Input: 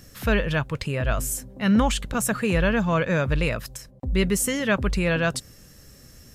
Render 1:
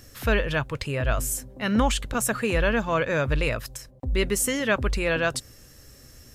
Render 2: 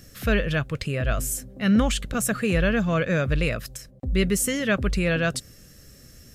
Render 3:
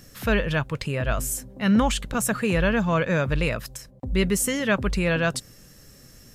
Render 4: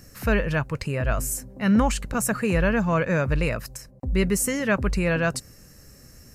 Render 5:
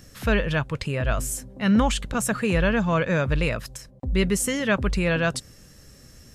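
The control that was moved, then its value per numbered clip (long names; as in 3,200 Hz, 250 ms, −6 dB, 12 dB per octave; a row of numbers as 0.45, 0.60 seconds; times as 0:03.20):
parametric band, centre frequency: 180, 930, 69, 3,400, 15,000 Hertz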